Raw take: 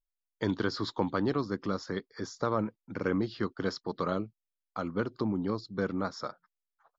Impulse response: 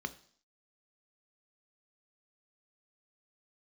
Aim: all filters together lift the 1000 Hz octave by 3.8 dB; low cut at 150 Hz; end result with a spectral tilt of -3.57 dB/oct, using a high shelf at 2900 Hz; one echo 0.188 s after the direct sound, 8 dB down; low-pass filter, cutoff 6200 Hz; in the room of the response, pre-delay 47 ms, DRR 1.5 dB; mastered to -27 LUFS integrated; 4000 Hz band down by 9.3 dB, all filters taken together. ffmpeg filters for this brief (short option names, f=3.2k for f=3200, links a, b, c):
-filter_complex "[0:a]highpass=150,lowpass=6.2k,equalizer=f=1k:t=o:g=6,highshelf=f=2.9k:g=-5,equalizer=f=4k:t=o:g=-6.5,aecho=1:1:188:0.398,asplit=2[a][b];[1:a]atrim=start_sample=2205,adelay=47[c];[b][c]afir=irnorm=-1:irlink=0,volume=-3.5dB[d];[a][d]amix=inputs=2:normalize=0,volume=3dB"